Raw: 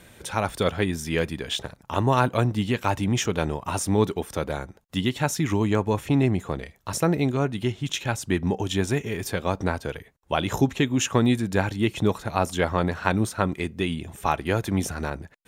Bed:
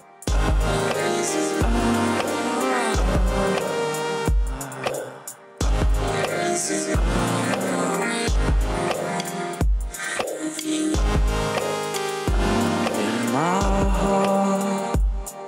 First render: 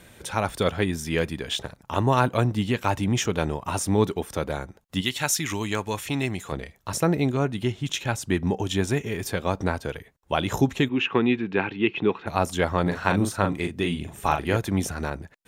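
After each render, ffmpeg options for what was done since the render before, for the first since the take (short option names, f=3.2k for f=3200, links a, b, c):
-filter_complex "[0:a]asettb=1/sr,asplit=3[a][b][c];[a]atrim=end=5.014[d];[b]atrim=start=5.01:end=6.52,asetpts=PTS-STARTPTS,afade=t=in:d=0.004:c=qsin,afade=t=out:st=1.506:d=0.004:c=qsin,tiltshelf=f=1.3k:g=-7.5[e];[c]atrim=start=6.516[f];[d][e]acrossfade=d=0.004:c1=hsin:c2=qsin[g];[g][f]acrossfade=d=0.004:c1=qsin:c2=hsin,asplit=3[h][i][j];[h]afade=t=out:st=10.88:d=0.02[k];[i]highpass=200,equalizer=f=390:t=q:w=4:g=5,equalizer=f=600:t=q:w=4:g=-10,equalizer=f=2.6k:t=q:w=4:g=8,lowpass=f=3.2k:w=0.5412,lowpass=f=3.2k:w=1.3066,afade=t=in:st=10.88:d=0.02,afade=t=out:st=12.26:d=0.02[l];[j]afade=t=in:st=12.26:d=0.02[m];[k][l][m]amix=inputs=3:normalize=0,asettb=1/sr,asplit=3[n][o][p];[n]atrim=end=12.824[q];[o]atrim=start=12.82:end=14.57,asetpts=PTS-STARTPTS,afade=t=in:d=0.004:c=qsin,afade=t=out:st=1.746:d=0.004:c=qsin,asplit=2[r][s];[s]adelay=40,volume=-6dB[t];[r][t]amix=inputs=2:normalize=0,atrim=end_sample=77175[u];[p]atrim=start=14.566[v];[q][u]acrossfade=d=0.004:c1=hsin:c2=qsin[w];[w][v]acrossfade=d=0.004:c1=qsin:c2=hsin"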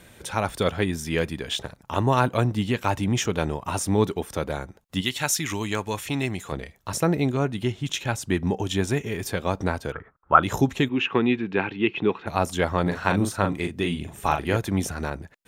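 -filter_complex "[0:a]asettb=1/sr,asplit=3[a][b][c];[a]atrim=end=9.924[d];[b]atrim=start=9.92:end=10.43,asetpts=PTS-STARTPTS,afade=t=in:d=0.004:c=qsin,afade=t=out:st=0.506:d=0.004:c=qsin,lowpass=f=1.3k:t=q:w=12[e];[c]atrim=start=10.426[f];[d][e]acrossfade=d=0.004:c1=hsin:c2=qsin[g];[g][f]acrossfade=d=0.004:c1=qsin:c2=hsin"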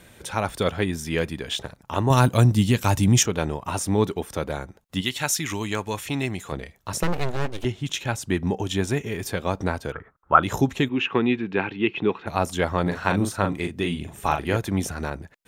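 -filter_complex "[0:a]asettb=1/sr,asplit=3[a][b][c];[a]atrim=end=2.104[d];[b]atrim=start=2.1:end=3.23,asetpts=PTS-STARTPTS,afade=t=in:d=0.004:c=qsin,afade=t=out:st=1.126:d=0.004:c=qsin,bass=f=250:g=8,treble=f=4k:g=12[e];[c]atrim=start=3.226[f];[d][e]acrossfade=d=0.004:c1=hsin:c2=qsin[g];[g][f]acrossfade=d=0.004:c1=qsin:c2=hsin,asettb=1/sr,asplit=3[h][i][j];[h]atrim=end=7.034[k];[i]atrim=start=7.03:end=7.65,asetpts=PTS-STARTPTS,afade=t=in:d=0.004:c=qsin,afade=t=out:st=0.616:d=0.004:c=qsin,aeval=exprs='abs(val(0))':c=same[l];[j]atrim=start=7.646[m];[k][l]acrossfade=d=0.004:c1=hsin:c2=qsin[n];[n][m]acrossfade=d=0.004:c1=qsin:c2=hsin"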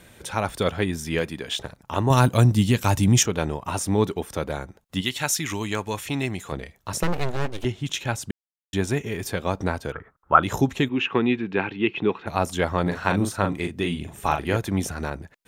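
-filter_complex "[0:a]asettb=1/sr,asplit=3[a][b][c];[a]atrim=end=1.194[d];[b]atrim=start=1.19:end=1.6,asetpts=PTS-STARTPTS,afade=t=in:d=0.004:c=qsin,afade=t=out:st=0.406:d=0.004:c=qsin,highpass=f=140:p=1[e];[c]atrim=start=1.596[f];[d][e]acrossfade=d=0.004:c1=hsin:c2=qsin[g];[g][f]acrossfade=d=0.004:c1=qsin:c2=hsin,asplit=3[h][i][j];[h]atrim=end=8.31,asetpts=PTS-STARTPTS,afade=t=out:st=8.306:d=0.004:c=hsin[k];[i]atrim=start=8.31:end=8.73,asetpts=PTS-STARTPTS,volume=0[l];[j]atrim=start=8.73,asetpts=PTS-STARTPTS,afade=t=in:d=0.004:c=hsin[m];[k][l][m]concat=n=3:v=0:a=1"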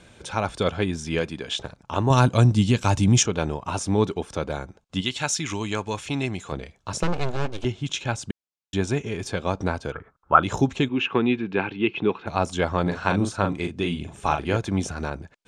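-af "lowpass=f=8k:w=0.5412,lowpass=f=8k:w=1.3066,bandreject=f=1.9k:w=7.9"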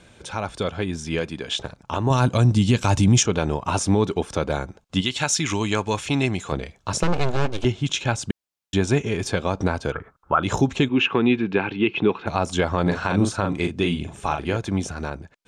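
-af "alimiter=limit=-13dB:level=0:latency=1:release=128,dynaudnorm=f=500:g=7:m=5dB"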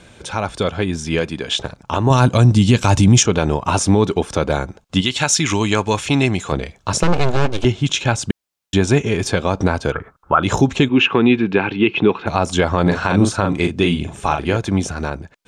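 -af "volume=6dB,alimiter=limit=-3dB:level=0:latency=1"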